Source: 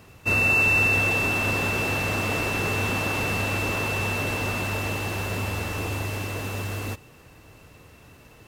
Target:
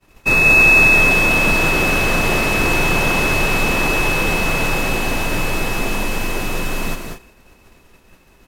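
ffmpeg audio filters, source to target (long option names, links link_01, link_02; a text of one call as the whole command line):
ffmpeg -i in.wav -af "afreqshift=-79,agate=range=-33dB:threshold=-42dB:ratio=3:detection=peak,aecho=1:1:192.4|227.4:0.501|0.251,volume=8dB" out.wav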